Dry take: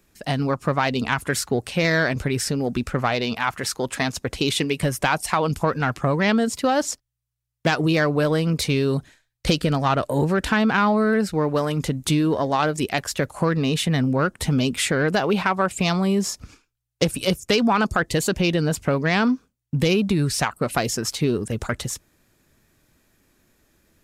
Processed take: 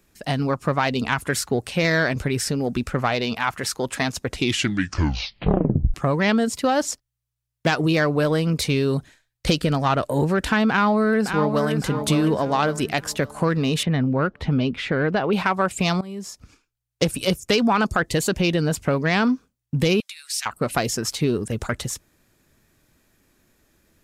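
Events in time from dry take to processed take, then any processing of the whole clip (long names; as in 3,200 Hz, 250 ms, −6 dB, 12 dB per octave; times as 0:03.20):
0:04.27: tape stop 1.67 s
0:10.69–0:11.79: delay throw 560 ms, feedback 40%, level −7 dB
0:13.83–0:15.33: high-frequency loss of the air 260 metres
0:16.01–0:17.08: fade in, from −18 dB
0:20.00–0:20.46: Bessel high-pass filter 2,700 Hz, order 4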